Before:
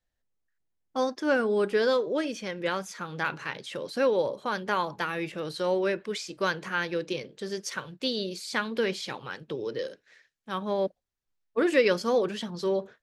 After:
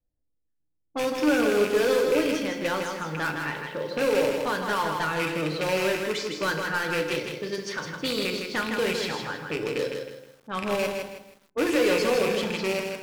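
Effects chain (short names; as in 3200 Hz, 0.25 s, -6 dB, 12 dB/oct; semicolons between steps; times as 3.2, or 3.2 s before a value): rattling part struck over -37 dBFS, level -20 dBFS; in parallel at -9 dB: wrapped overs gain 25.5 dB; on the sum: low-pass opened by the level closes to 440 Hz, open at -25.5 dBFS; overloaded stage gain 21 dB; FDN reverb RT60 0.88 s, low-frequency decay 1.25×, high-frequency decay 0.75×, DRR 4.5 dB; lo-fi delay 0.159 s, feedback 35%, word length 9-bit, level -5 dB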